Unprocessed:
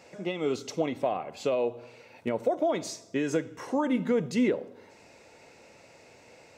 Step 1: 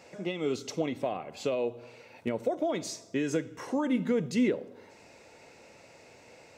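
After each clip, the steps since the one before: dynamic bell 870 Hz, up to -5 dB, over -40 dBFS, Q 0.78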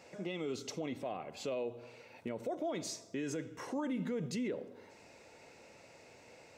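peak limiter -26 dBFS, peak gain reduction 9 dB; trim -3.5 dB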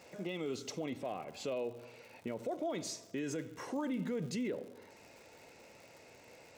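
crackle 130 per s -48 dBFS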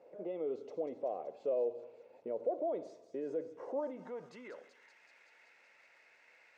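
feedback echo behind a high-pass 190 ms, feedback 77%, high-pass 3.8 kHz, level -8 dB; dynamic bell 670 Hz, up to +5 dB, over -49 dBFS, Q 0.77; band-pass sweep 500 Hz -> 1.8 kHz, 3.65–4.76 s; trim +2 dB

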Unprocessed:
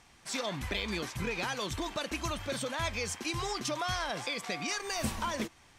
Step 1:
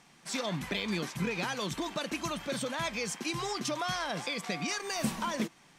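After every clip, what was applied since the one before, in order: resonant low shelf 120 Hz -10 dB, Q 3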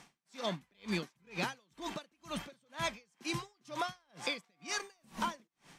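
compression 1.5:1, threshold -38 dBFS, peak gain reduction 5 dB; logarithmic tremolo 2.1 Hz, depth 40 dB; trim +3.5 dB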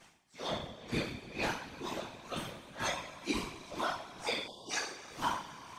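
two-slope reverb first 0.51 s, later 4.9 s, from -19 dB, DRR -9 dB; whisper effect; spectral selection erased 4.47–4.71 s, 1.1–2.8 kHz; trim -7.5 dB

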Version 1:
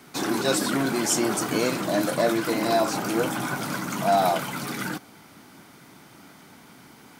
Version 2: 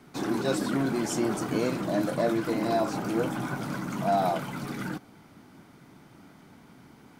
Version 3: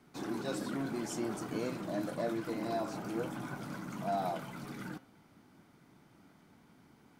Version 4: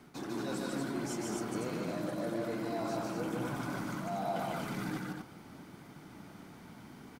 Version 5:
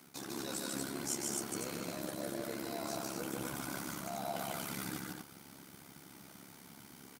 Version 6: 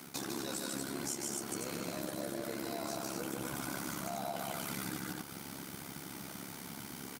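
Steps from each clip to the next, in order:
tilt EQ -2 dB/octave; trim -5.5 dB
de-hum 132.5 Hz, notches 31; trim -9 dB
reverse; compression 4:1, threshold -45 dBFS, peak gain reduction 13 dB; reverse; loudspeakers at several distances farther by 51 m -2 dB, 82 m -4 dB; trim +7.5 dB
high-pass 100 Hz; pre-emphasis filter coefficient 0.8; AM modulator 69 Hz, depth 55%; trim +11.5 dB
compression 4:1, threshold -46 dBFS, peak gain reduction 12 dB; trim +9 dB

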